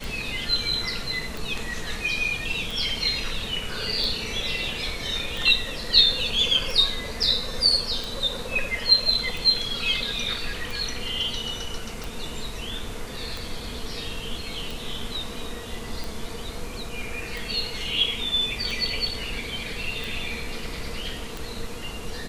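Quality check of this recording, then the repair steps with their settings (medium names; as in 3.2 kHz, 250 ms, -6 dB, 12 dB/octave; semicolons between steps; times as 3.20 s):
tick 45 rpm
7.23 s: dropout 3.6 ms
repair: de-click; interpolate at 7.23 s, 3.6 ms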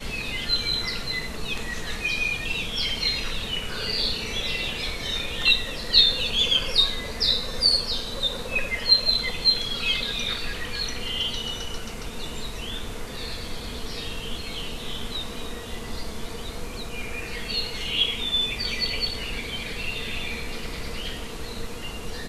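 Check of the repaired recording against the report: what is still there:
nothing left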